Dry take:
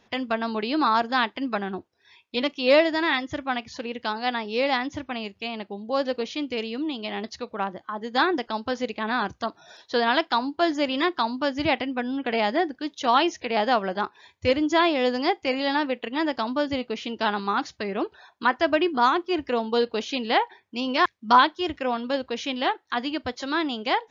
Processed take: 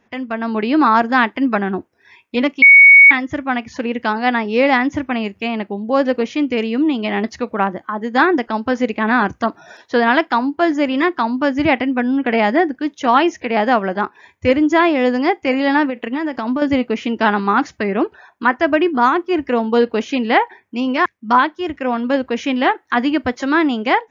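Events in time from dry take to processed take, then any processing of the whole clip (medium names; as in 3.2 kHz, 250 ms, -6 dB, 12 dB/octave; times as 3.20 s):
2.62–3.11 s: bleep 2.23 kHz -9 dBFS
15.85–16.62 s: compression, threshold -27 dBFS
whole clip: ten-band graphic EQ 250 Hz +5 dB, 2 kHz +5 dB, 4 kHz -11 dB; level rider; trim -1 dB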